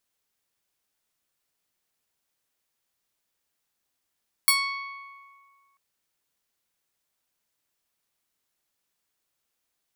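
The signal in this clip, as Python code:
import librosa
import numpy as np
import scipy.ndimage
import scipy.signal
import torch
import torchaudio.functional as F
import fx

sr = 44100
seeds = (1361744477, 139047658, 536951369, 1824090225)

y = fx.pluck(sr, length_s=1.29, note=85, decay_s=1.92, pick=0.29, brightness='bright')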